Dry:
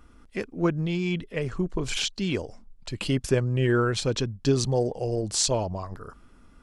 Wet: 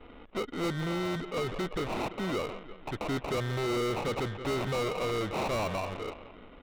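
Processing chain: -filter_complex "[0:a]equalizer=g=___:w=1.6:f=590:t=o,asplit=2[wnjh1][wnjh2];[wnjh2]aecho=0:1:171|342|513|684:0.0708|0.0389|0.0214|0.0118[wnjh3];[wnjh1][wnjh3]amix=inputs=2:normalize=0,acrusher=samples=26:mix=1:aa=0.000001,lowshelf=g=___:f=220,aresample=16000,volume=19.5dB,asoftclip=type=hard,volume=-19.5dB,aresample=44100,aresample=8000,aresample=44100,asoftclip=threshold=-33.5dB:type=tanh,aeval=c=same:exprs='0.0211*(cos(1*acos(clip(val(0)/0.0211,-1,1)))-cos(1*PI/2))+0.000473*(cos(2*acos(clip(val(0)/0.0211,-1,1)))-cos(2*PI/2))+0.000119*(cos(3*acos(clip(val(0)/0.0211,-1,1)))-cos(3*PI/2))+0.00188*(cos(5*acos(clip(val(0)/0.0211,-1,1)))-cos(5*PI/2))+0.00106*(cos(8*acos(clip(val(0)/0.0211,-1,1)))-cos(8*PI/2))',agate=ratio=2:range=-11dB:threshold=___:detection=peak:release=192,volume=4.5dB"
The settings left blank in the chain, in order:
6.5, -10, -57dB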